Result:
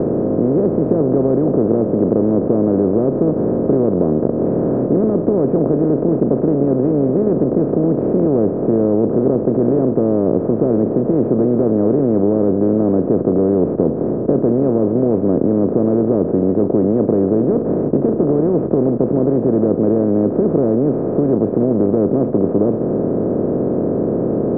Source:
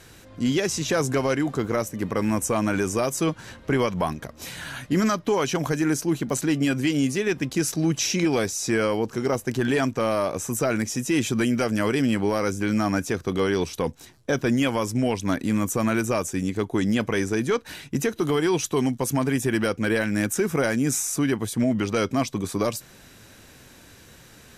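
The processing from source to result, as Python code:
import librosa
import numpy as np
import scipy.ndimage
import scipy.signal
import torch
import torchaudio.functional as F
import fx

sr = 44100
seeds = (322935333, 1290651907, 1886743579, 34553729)

y = fx.bin_compress(x, sr, power=0.2)
y = fx.ladder_lowpass(y, sr, hz=640.0, resonance_pct=25)
y = fx.band_squash(y, sr, depth_pct=40)
y = y * librosa.db_to_amplitude(5.0)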